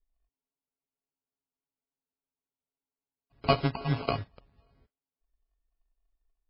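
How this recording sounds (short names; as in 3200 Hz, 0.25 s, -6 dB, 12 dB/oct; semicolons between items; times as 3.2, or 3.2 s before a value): a buzz of ramps at a fixed pitch in blocks of 64 samples; phasing stages 6, 3.6 Hz, lowest notch 240–1200 Hz; aliases and images of a low sample rate 1800 Hz, jitter 0%; MP3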